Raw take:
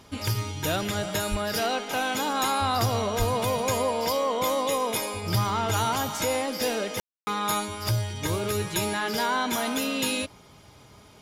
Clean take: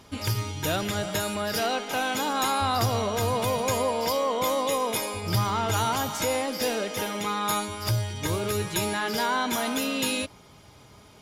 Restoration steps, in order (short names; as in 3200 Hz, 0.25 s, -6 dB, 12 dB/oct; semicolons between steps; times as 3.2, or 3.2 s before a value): 1.3–1.42 HPF 140 Hz 24 dB/oct; 3.18–3.3 HPF 140 Hz 24 dB/oct; room tone fill 7–7.27